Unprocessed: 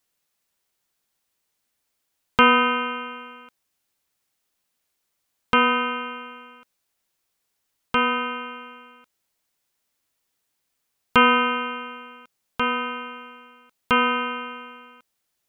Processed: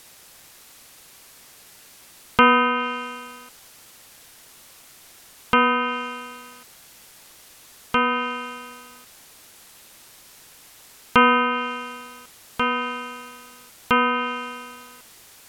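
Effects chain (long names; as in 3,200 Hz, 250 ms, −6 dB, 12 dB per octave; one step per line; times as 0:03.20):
bit-depth reduction 8 bits, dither triangular
treble cut that deepens with the level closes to 2,700 Hz, closed at −17 dBFS
level +1 dB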